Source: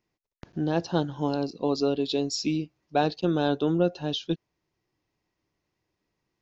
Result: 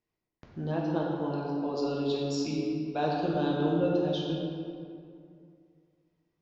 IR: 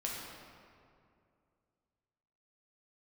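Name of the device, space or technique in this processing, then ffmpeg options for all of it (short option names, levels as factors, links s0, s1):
swimming-pool hall: -filter_complex "[0:a]asettb=1/sr,asplit=3[s0][s1][s2];[s0]atrim=end=0.724[s3];[s1]atrim=start=0.72:end=1.77,asetpts=PTS-STARTPTS,afade=t=in:d=0.004:c=qsin,afade=t=out:st=1.046:d=0.004:c=qsin,bass=f=250:g=-5,treble=f=4000:g=-13[s4];[s2]atrim=start=1.766[s5];[s3][s4]acrossfade=d=0.004:c1=hsin:c2=qsin[s6];[s6][s5]acrossfade=d=0.004:c1=qsin:c2=hsin[s7];[1:a]atrim=start_sample=2205[s8];[s7][s8]afir=irnorm=-1:irlink=0,highshelf=f=4900:g=-5,volume=0.531"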